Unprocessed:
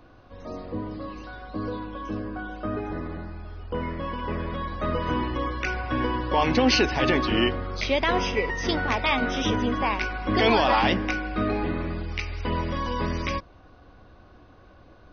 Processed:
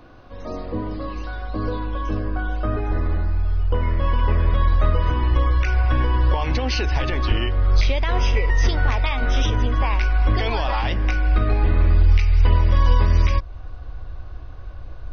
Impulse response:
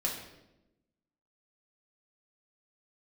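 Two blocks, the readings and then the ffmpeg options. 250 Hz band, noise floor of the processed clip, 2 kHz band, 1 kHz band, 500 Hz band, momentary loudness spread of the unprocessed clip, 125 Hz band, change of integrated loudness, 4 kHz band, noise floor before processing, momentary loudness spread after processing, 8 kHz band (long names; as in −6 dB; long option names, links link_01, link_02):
−3.0 dB, −35 dBFS, −1.0 dB, −1.0 dB, −2.0 dB, 14 LU, +12.5 dB, +4.5 dB, −2.0 dB, −52 dBFS, 18 LU, can't be measured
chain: -af "alimiter=limit=-20.5dB:level=0:latency=1:release=334,asubboost=boost=10:cutoff=68,volume=5.5dB"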